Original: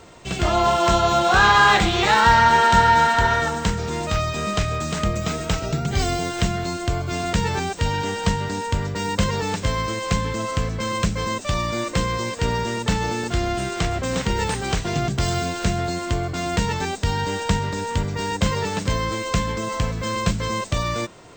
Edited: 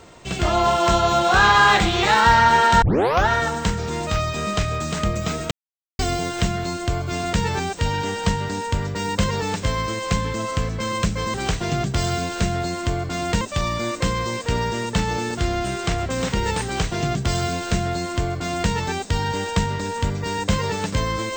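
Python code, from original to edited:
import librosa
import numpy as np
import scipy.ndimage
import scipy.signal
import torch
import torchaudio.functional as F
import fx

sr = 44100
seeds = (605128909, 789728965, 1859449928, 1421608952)

y = fx.edit(x, sr, fx.tape_start(start_s=2.82, length_s=0.46),
    fx.silence(start_s=5.51, length_s=0.48),
    fx.duplicate(start_s=14.58, length_s=2.07, to_s=11.34), tone=tone)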